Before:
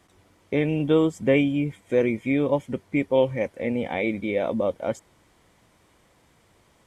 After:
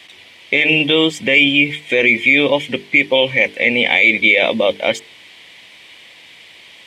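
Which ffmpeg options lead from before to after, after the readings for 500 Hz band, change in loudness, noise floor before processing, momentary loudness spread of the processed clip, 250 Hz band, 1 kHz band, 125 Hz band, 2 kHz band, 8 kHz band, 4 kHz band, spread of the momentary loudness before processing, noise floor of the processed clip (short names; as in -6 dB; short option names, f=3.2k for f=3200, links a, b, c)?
+5.5 dB, +11.0 dB, -61 dBFS, 7 LU, +3.5 dB, +7.5 dB, -0.5 dB, +21.5 dB, n/a, +24.5 dB, 7 LU, -43 dBFS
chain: -filter_complex "[0:a]highpass=f=330:p=1,bandreject=f=50:t=h:w=6,bandreject=f=100:t=h:w=6,bandreject=f=150:t=h:w=6,bandreject=f=200:t=h:w=6,bandreject=f=250:t=h:w=6,bandreject=f=300:t=h:w=6,bandreject=f=350:t=h:w=6,bandreject=f=400:t=h:w=6,bandreject=f=450:t=h:w=6,acrossover=split=3500[a][b];[a]aexciter=amount=11.1:drive=6.9:freq=2.1k[c];[b]acrusher=bits=5:mode=log:mix=0:aa=0.000001[d];[c][d]amix=inputs=2:normalize=0,alimiter=level_in=11.5dB:limit=-1dB:release=50:level=0:latency=1,volume=-1dB"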